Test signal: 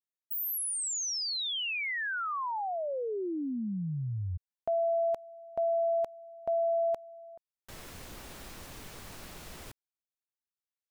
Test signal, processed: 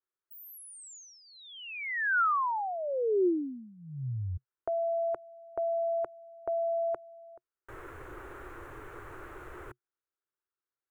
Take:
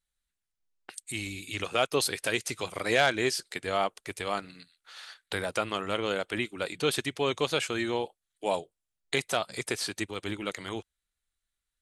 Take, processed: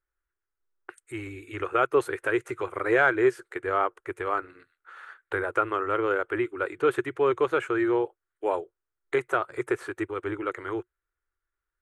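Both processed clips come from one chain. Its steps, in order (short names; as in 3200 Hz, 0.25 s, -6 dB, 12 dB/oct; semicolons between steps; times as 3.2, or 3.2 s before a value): EQ curve 130 Hz 0 dB, 190 Hz -20 dB, 360 Hz +10 dB, 670 Hz -2 dB, 1400 Hz +9 dB, 4900 Hz -25 dB, 7000 Hz -15 dB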